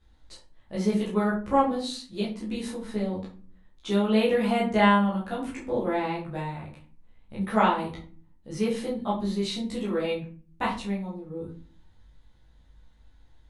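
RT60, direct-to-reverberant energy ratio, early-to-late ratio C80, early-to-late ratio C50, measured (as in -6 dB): 0.40 s, -8.0 dB, 12.5 dB, 7.0 dB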